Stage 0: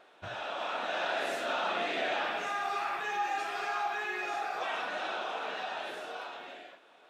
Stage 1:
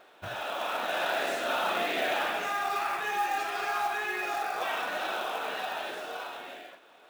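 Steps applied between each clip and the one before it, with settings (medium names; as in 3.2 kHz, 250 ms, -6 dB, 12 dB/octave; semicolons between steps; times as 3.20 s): short-mantissa float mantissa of 2-bit; trim +3 dB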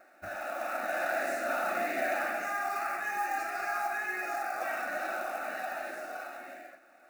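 static phaser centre 660 Hz, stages 8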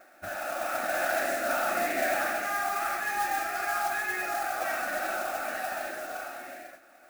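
modulation noise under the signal 12 dB; trim +3 dB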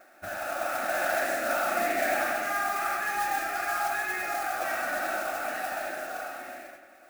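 bucket-brigade echo 96 ms, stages 2048, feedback 58%, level -8 dB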